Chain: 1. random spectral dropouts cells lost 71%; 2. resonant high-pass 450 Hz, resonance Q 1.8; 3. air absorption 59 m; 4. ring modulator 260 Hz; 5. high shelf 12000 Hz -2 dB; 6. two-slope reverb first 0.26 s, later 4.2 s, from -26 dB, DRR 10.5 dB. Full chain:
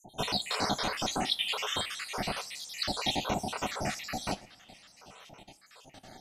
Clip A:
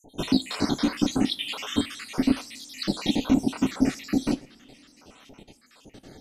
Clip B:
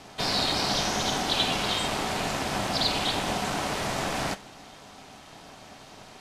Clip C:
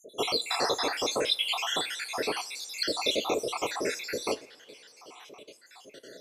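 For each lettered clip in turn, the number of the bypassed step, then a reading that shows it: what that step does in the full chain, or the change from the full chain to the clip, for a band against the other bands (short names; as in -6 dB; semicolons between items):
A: 2, 250 Hz band +16.5 dB; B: 1, crest factor change -2.0 dB; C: 4, crest factor change -2.0 dB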